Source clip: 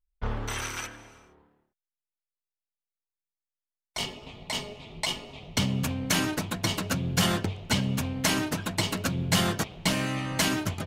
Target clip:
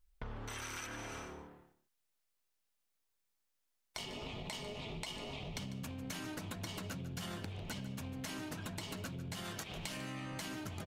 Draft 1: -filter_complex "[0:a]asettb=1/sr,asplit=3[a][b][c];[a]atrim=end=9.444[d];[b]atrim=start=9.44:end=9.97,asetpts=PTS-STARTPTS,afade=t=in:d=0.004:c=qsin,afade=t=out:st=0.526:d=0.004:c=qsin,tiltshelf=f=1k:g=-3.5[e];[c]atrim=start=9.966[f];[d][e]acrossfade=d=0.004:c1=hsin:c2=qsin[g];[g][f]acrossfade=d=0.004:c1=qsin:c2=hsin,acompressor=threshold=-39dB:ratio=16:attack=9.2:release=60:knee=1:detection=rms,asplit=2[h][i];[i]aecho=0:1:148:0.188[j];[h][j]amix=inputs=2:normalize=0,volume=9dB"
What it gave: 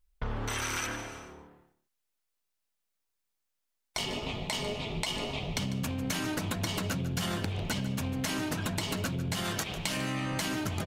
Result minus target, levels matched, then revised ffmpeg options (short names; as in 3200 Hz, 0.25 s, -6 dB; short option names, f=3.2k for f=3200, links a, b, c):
compressor: peak gain reduction -11 dB
-filter_complex "[0:a]asettb=1/sr,asplit=3[a][b][c];[a]atrim=end=9.444[d];[b]atrim=start=9.44:end=9.97,asetpts=PTS-STARTPTS,afade=t=in:d=0.004:c=qsin,afade=t=out:st=0.526:d=0.004:c=qsin,tiltshelf=f=1k:g=-3.5[e];[c]atrim=start=9.966[f];[d][e]acrossfade=d=0.004:c1=hsin:c2=qsin[g];[g][f]acrossfade=d=0.004:c1=qsin:c2=hsin,acompressor=threshold=-50.5dB:ratio=16:attack=9.2:release=60:knee=1:detection=rms,asplit=2[h][i];[i]aecho=0:1:148:0.188[j];[h][j]amix=inputs=2:normalize=0,volume=9dB"